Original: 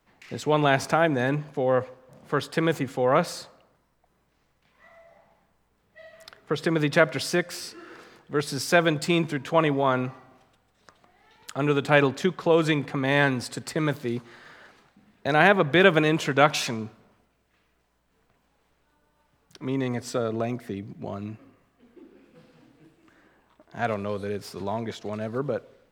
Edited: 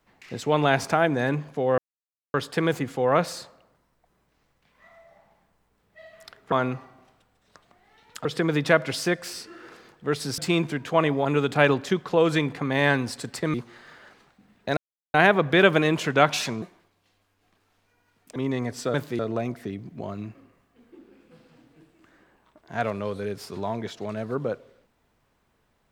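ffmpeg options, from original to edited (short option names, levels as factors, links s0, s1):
-filter_complex "[0:a]asplit=13[s0][s1][s2][s3][s4][s5][s6][s7][s8][s9][s10][s11][s12];[s0]atrim=end=1.78,asetpts=PTS-STARTPTS,afade=t=out:st=1.776:d=0.004:c=hsin[s13];[s1]atrim=start=1.78:end=2.34,asetpts=PTS-STARTPTS,volume=0[s14];[s2]atrim=start=2.34:end=6.522,asetpts=PTS-STARTPTS,afade=t=in:d=0.004:c=hsin[s15];[s3]atrim=start=9.848:end=11.582[s16];[s4]atrim=start=6.518:end=8.652[s17];[s5]atrim=start=8.978:end=9.852[s18];[s6]atrim=start=11.578:end=13.872[s19];[s7]atrim=start=14.118:end=15.35,asetpts=PTS-STARTPTS,afade=t=out:st=1.228:d=0.004:c=hsin,apad=pad_dur=0.37[s20];[s8]atrim=start=15.35:end=16.834,asetpts=PTS-STARTPTS,afade=t=in:d=0.004:c=hsin[s21];[s9]atrim=start=16.83:end=19.65,asetpts=PTS-STARTPTS,asetrate=71442,aresample=44100[s22];[s10]atrim=start=19.646:end=20.232[s23];[s11]atrim=start=13.868:end=14.122[s24];[s12]atrim=start=20.228[s25];[s13][s14][s15]concat=n=3:v=0:a=1[s26];[s26][s16]acrossfade=d=0.004:c1=hsin:c2=hsin[s27];[s27][s17]acrossfade=d=0.004:c1=hsin:c2=hsin[s28];[s28][s18]acrossfade=d=0.004:c1=hsin:c2=hsin[s29];[s29][s19]acrossfade=d=0.004:c1=hsin:c2=hsin[s30];[s20][s21]concat=n=2:v=0:a=1[s31];[s30][s31]acrossfade=d=0.004:c1=hsin:c2=hsin[s32];[s32][s22]acrossfade=d=0.004:c1=hsin:c2=hsin[s33];[s33][s23]acrossfade=d=0.004:c1=hsin:c2=hsin[s34];[s34][s24]acrossfade=d=0.004:c1=hsin:c2=hsin[s35];[s35][s25]acrossfade=d=0.004:c1=hsin:c2=hsin"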